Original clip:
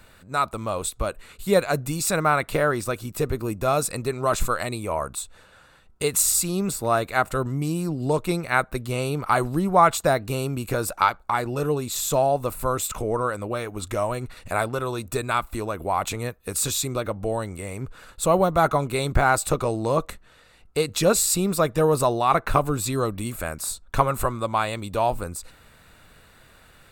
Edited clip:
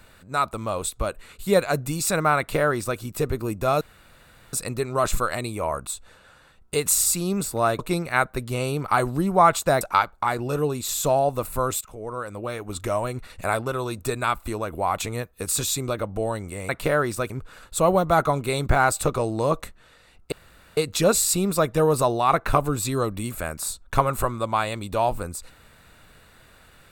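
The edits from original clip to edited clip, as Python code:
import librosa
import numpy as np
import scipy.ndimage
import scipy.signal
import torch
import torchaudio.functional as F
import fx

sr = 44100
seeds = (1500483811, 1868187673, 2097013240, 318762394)

y = fx.edit(x, sr, fx.duplicate(start_s=2.38, length_s=0.61, to_s=17.76),
    fx.insert_room_tone(at_s=3.81, length_s=0.72),
    fx.cut(start_s=7.07, length_s=1.1),
    fx.cut(start_s=10.19, length_s=0.69),
    fx.fade_in_from(start_s=12.88, length_s=0.93, floor_db=-18.0),
    fx.insert_room_tone(at_s=20.78, length_s=0.45), tone=tone)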